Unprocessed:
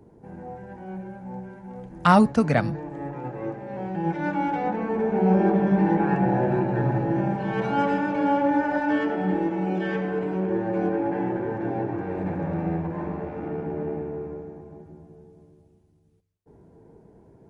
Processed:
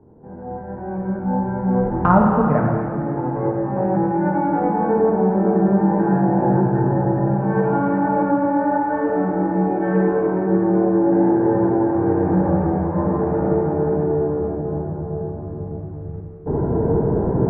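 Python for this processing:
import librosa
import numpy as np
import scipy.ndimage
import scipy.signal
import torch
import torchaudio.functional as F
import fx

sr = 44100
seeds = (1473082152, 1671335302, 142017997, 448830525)

y = fx.recorder_agc(x, sr, target_db=-12.5, rise_db_per_s=10.0, max_gain_db=30)
y = scipy.signal.sosfilt(scipy.signal.butter(4, 1400.0, 'lowpass', fs=sr, output='sos'), y)
y = fx.rev_plate(y, sr, seeds[0], rt60_s=2.4, hf_ratio=1.0, predelay_ms=0, drr_db=-1.5)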